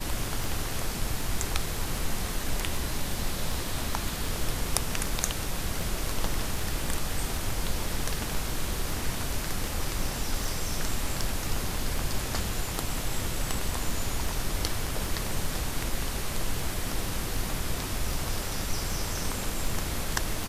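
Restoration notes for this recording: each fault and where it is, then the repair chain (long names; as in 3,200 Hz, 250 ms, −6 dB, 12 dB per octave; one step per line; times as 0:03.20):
scratch tick 78 rpm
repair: click removal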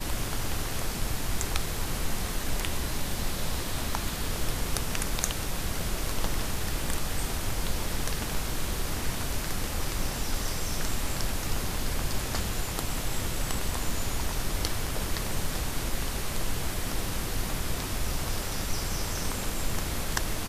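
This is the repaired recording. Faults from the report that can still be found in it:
none of them is left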